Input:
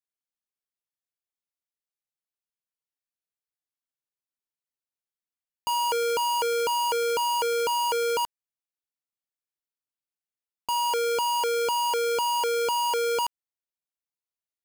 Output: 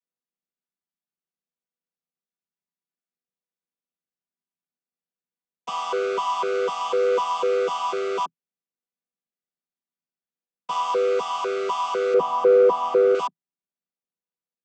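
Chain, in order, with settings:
channel vocoder with a chord as carrier minor triad, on E3
0:12.14–0:13.15: tilt shelving filter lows +9.5 dB, about 1,200 Hz
in parallel at −6 dB: soft clipping −18 dBFS, distortion −12 dB

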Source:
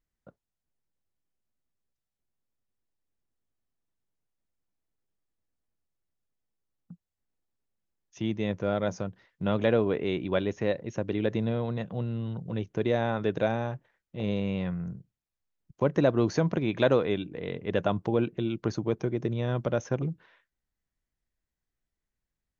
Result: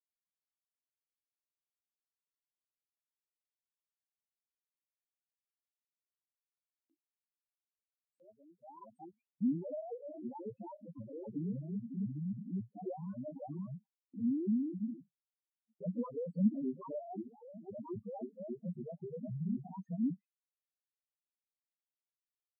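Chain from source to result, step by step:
pitch shifter swept by a sawtooth +11.5 semitones, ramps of 268 ms
spectral peaks only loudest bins 2
noise gate with hold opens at −51 dBFS
band-pass filter sweep 4,000 Hz → 220 Hz, 0:08.67–0:09.40
level +3 dB

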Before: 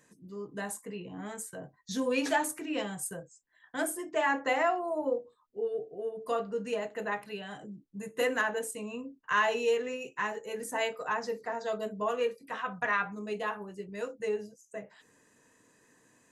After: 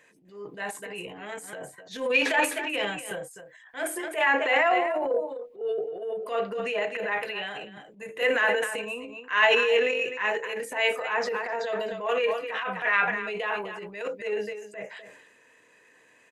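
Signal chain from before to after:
low-shelf EQ 300 Hz −7.5 dB
on a send: single-tap delay 252 ms −13.5 dB
on the sum: transient designer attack −10 dB, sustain +8 dB
drawn EQ curve 260 Hz 0 dB, 480 Hz +8 dB, 1,200 Hz +4 dB, 2,400 Hz +14 dB, 5,700 Hz −2 dB

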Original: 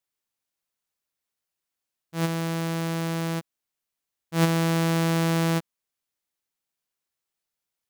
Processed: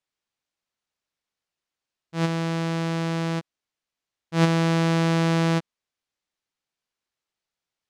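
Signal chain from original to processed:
low-pass filter 5,900 Hz 12 dB per octave
level +2 dB

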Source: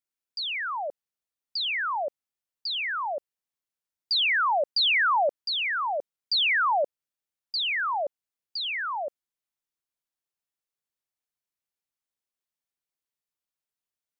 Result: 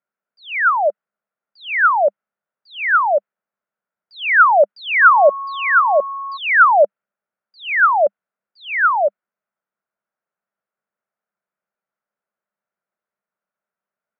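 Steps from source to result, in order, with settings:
in parallel at +1 dB: output level in coarse steps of 16 dB
on the sum: loudspeaker in its box 190–2,200 Hz, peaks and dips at 200 Hz +8 dB, 290 Hz −9 dB, 610 Hz +7 dB, 1,400 Hz +9 dB
0:05.01–0:06.36: steady tone 1,100 Hz −29 dBFS
one half of a high-frequency compander decoder only
level +5.5 dB

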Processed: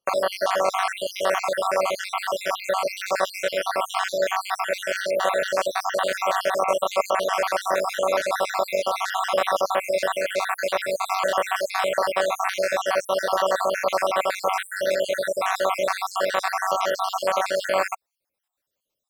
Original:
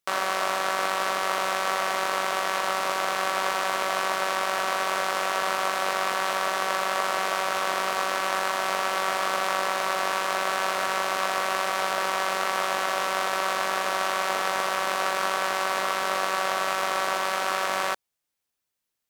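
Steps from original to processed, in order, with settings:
time-frequency cells dropped at random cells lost 64%
parametric band 570 Hz +9.5 dB 0.62 octaves
level +3.5 dB

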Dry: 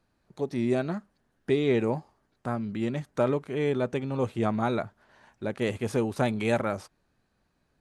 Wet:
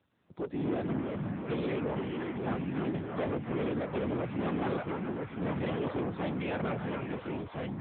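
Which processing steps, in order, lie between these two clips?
random phases in short frames
soft clipping −29.5 dBFS, distortion −7 dB
echo through a band-pass that steps 287 ms, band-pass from 1,100 Hz, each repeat 0.7 octaves, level −4.5 dB
delay with pitch and tempo change per echo 186 ms, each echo −3 semitones, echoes 2
AMR narrowband 7.95 kbit/s 8,000 Hz

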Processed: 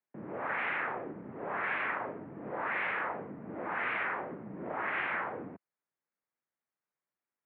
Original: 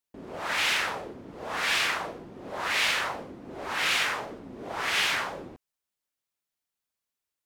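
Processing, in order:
single-sideband voice off tune −60 Hz 190–2,200 Hz
downward compressor 1.5 to 1, threshold −37 dBFS, peak gain reduction 4.5 dB

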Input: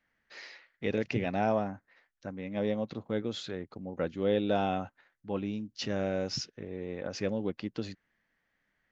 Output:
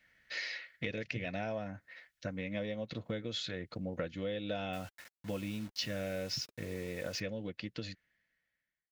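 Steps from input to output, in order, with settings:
fade-out on the ending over 2.63 s
octave-band graphic EQ 250/1,000/2,000/4,000 Hz −7/−9/+5/+3 dB
downward compressor 6 to 1, threshold −43 dBFS, peak gain reduction 15.5 dB
0:04.73–0:07.20: bit-depth reduction 10 bits, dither none
notch comb filter 400 Hz
level +9 dB

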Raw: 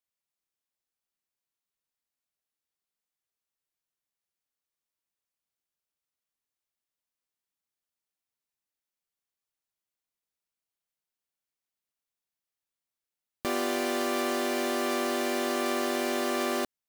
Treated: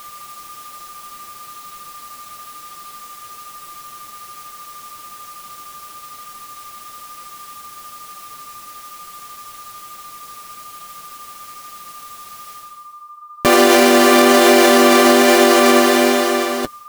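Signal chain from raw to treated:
fade-out on the ending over 1.96 s
reversed playback
upward compression, threshold −40 dBFS
reversed playback
steady tone 1,200 Hz −58 dBFS
flanger 1.1 Hz, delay 5.1 ms, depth 4.7 ms, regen −33%
boost into a limiter +27.5 dB
level −1 dB

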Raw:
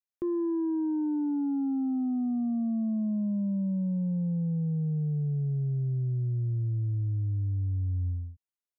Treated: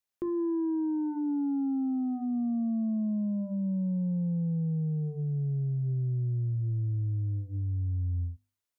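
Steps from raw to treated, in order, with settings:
mains-hum notches 50/100/150/200/250/300/350/400 Hz
brickwall limiter −32 dBFS, peak gain reduction 7.5 dB
level +5.5 dB

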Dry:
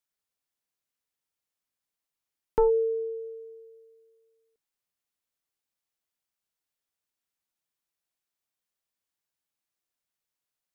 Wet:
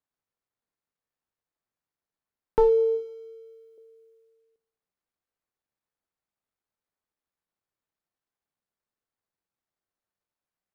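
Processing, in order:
running median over 15 samples
0:02.95–0:03.78: mains-hum notches 50/100/150/200/250/300/350/400/450 Hz
on a send: high-pass filter 93 Hz 24 dB per octave + convolution reverb RT60 0.90 s, pre-delay 3 ms, DRR 13 dB
on the sum: level +2 dB

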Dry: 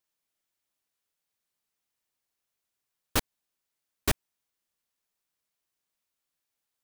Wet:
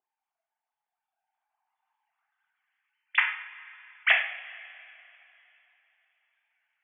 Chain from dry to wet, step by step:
three sine waves on the formant tracks
coupled-rooms reverb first 0.61 s, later 3.3 s, from −18 dB, DRR 0.5 dB
band-pass filter sweep 380 Hz → 2,000 Hz, 0:00.75–0:02.85
level +7 dB

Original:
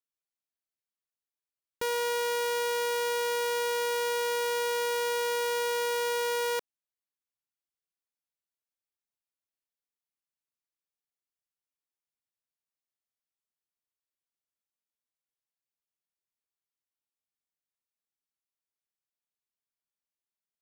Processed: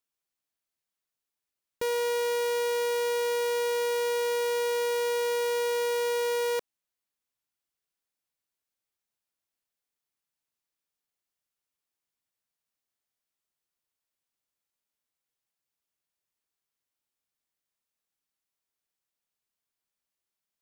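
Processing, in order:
hard clipping −31 dBFS, distortion −12 dB
level +5 dB

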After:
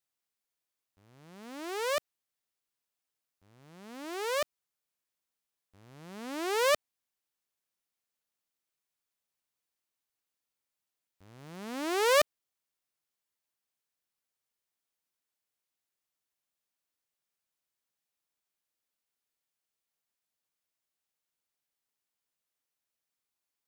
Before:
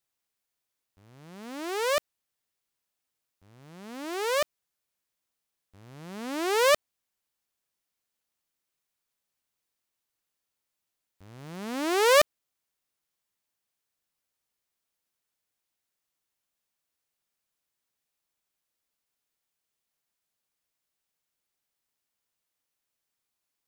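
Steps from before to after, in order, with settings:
low-shelf EQ 130 Hz −4 dB
level −4.5 dB

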